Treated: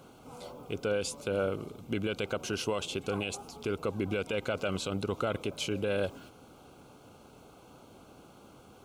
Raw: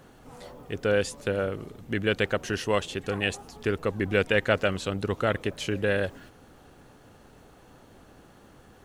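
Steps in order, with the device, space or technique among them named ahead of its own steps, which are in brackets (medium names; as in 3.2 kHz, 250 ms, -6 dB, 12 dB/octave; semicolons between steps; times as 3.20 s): PA system with an anti-feedback notch (high-pass 110 Hz 6 dB/octave; Butterworth band-stop 1.8 kHz, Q 3; peak limiter -21 dBFS, peak gain reduction 11 dB)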